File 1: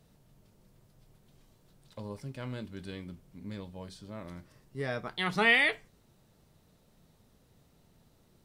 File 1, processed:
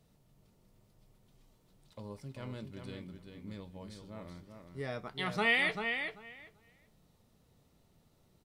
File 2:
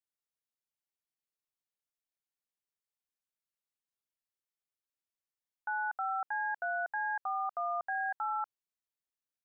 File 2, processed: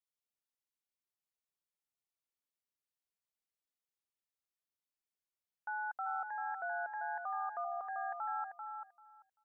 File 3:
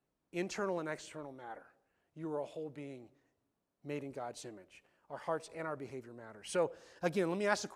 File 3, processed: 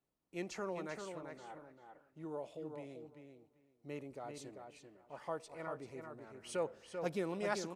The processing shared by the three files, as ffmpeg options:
-filter_complex "[0:a]bandreject=frequency=1600:width=13,asplit=2[link_01][link_02];[link_02]adelay=390,lowpass=frequency=4800:poles=1,volume=-6dB,asplit=2[link_03][link_04];[link_04]adelay=390,lowpass=frequency=4800:poles=1,volume=0.16,asplit=2[link_05][link_06];[link_06]adelay=390,lowpass=frequency=4800:poles=1,volume=0.16[link_07];[link_01][link_03][link_05][link_07]amix=inputs=4:normalize=0,volume=-4.5dB"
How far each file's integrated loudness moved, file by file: −4.5, −5.0, −4.5 LU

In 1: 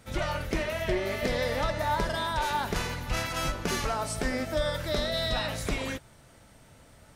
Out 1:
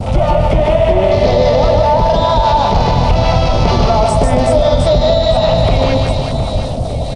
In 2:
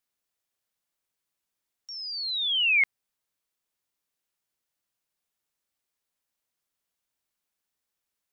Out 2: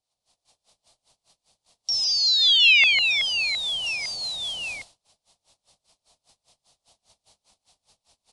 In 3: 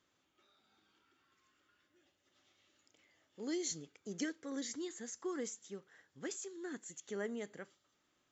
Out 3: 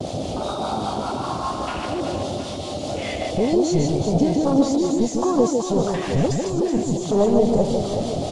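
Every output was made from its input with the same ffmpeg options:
-filter_complex "[0:a]aeval=exprs='val(0)+0.5*0.02*sgn(val(0))':channel_layout=same,afwtdn=0.0126,firequalizer=gain_entry='entry(100,0);entry(330,-9);entry(680,5);entry(1600,-8);entry(4200,1);entry(6700,-6)':delay=0.05:min_phase=1,acrossover=split=650[link_01][link_02];[link_01]aeval=exprs='val(0)*(1-0.5/2+0.5/2*cos(2*PI*5*n/s))':channel_layout=same[link_03];[link_02]aeval=exprs='val(0)*(1-0.5/2-0.5/2*cos(2*PI*5*n/s))':channel_layout=same[link_04];[link_03][link_04]amix=inputs=2:normalize=0,acompressor=threshold=-33dB:ratio=2.5,equalizer=frequency=1600:width_type=o:width=1.3:gain=-10.5,asplit=2[link_05][link_06];[link_06]aecho=0:1:150|375|712.5|1219|1978:0.631|0.398|0.251|0.158|0.1[link_07];[link_05][link_07]amix=inputs=2:normalize=0,agate=range=-41dB:threshold=-60dB:ratio=16:detection=peak,acrossover=split=2600[link_08][link_09];[link_09]acompressor=threshold=-50dB:ratio=4:attack=1:release=60[link_10];[link_08][link_10]amix=inputs=2:normalize=0,aresample=22050,aresample=44100,alimiter=level_in=26dB:limit=-1dB:release=50:level=0:latency=1,volume=-1dB"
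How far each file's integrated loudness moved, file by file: +17.5, +5.0, +21.0 LU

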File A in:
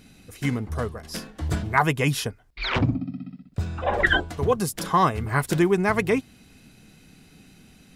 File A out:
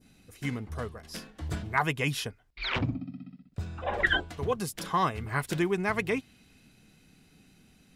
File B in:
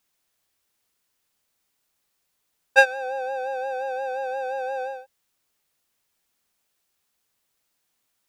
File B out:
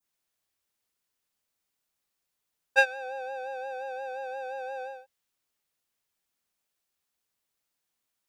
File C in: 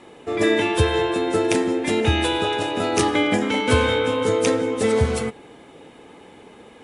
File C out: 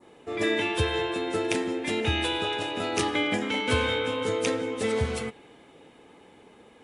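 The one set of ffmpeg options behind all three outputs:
-af "adynamicequalizer=threshold=0.0112:dfrequency=2800:dqfactor=0.82:tfrequency=2800:tqfactor=0.82:attack=5:release=100:ratio=0.375:range=2.5:mode=boostabove:tftype=bell,volume=-8dB"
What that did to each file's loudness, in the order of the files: −6.5, −6.5, −6.5 LU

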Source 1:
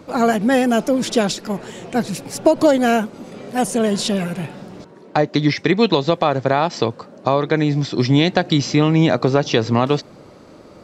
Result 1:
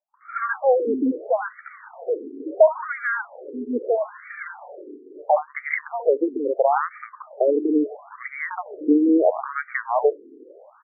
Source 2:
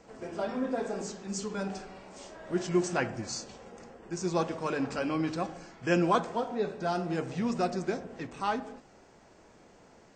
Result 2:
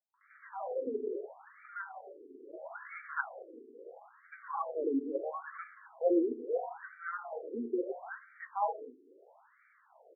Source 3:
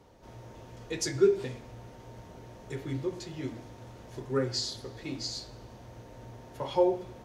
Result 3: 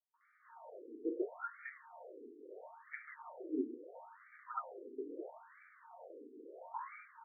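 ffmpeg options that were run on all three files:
-filter_complex "[0:a]acrossover=split=210|1000[link_01][link_02][link_03];[link_02]adelay=140[link_04];[link_03]adelay=210[link_05];[link_01][link_04][link_05]amix=inputs=3:normalize=0,afftfilt=real='re*between(b*sr/1024,320*pow(1700/320,0.5+0.5*sin(2*PI*0.75*pts/sr))/1.41,320*pow(1700/320,0.5+0.5*sin(2*PI*0.75*pts/sr))*1.41)':imag='im*between(b*sr/1024,320*pow(1700/320,0.5+0.5*sin(2*PI*0.75*pts/sr))/1.41,320*pow(1700/320,0.5+0.5*sin(2*PI*0.75*pts/sr))*1.41)':win_size=1024:overlap=0.75,volume=3dB"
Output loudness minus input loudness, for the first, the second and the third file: −4.5, −5.0, −15.0 LU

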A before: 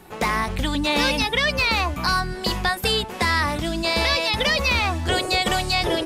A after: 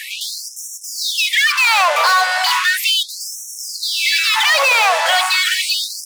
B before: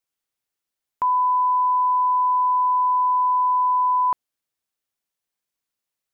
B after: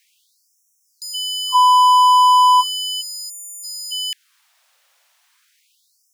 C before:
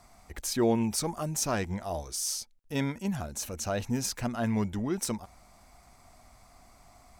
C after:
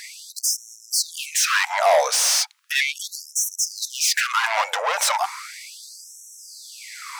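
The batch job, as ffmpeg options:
-filter_complex "[0:a]asplit=2[link_01][link_02];[link_02]highpass=frequency=720:poles=1,volume=33dB,asoftclip=type=tanh:threshold=-10.5dB[link_03];[link_01][link_03]amix=inputs=2:normalize=0,lowpass=frequency=3600:poles=1,volume=-6dB,afftfilt=real='re*gte(b*sr/1024,440*pow(5500/440,0.5+0.5*sin(2*PI*0.36*pts/sr)))':imag='im*gte(b*sr/1024,440*pow(5500/440,0.5+0.5*sin(2*PI*0.36*pts/sr)))':win_size=1024:overlap=0.75,volume=4dB"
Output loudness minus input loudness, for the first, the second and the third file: +7.0, +5.0, +10.5 LU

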